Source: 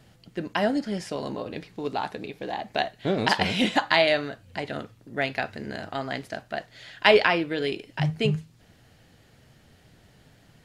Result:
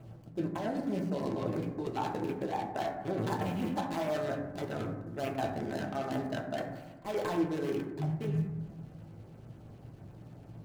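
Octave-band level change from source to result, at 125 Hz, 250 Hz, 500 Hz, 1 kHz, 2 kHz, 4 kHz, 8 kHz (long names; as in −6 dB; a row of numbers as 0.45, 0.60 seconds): −3.0, −4.0, −8.5, −8.0, −17.5, −19.5, −7.0 decibels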